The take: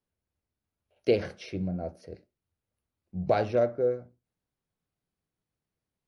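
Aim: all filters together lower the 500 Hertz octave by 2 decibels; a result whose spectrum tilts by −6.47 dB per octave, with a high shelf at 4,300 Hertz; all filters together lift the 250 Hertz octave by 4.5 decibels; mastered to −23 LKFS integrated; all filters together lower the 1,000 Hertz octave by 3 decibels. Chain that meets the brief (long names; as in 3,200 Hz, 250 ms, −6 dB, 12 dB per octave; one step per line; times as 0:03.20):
parametric band 250 Hz +8 dB
parametric band 500 Hz −3.5 dB
parametric band 1,000 Hz −4 dB
high-shelf EQ 4,300 Hz +6.5 dB
level +7 dB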